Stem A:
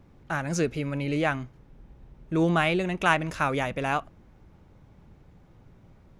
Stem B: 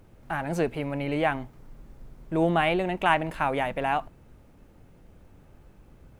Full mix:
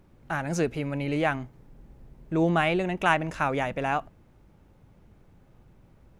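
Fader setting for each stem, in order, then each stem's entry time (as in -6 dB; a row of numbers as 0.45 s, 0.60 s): -4.5 dB, -7.5 dB; 0.00 s, 0.00 s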